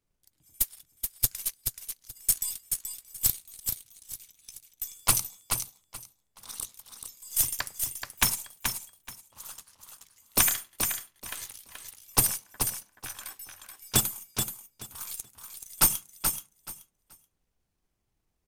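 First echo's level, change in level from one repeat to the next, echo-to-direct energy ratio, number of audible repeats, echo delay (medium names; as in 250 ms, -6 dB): -6.0 dB, -14.0 dB, -6.0 dB, 3, 429 ms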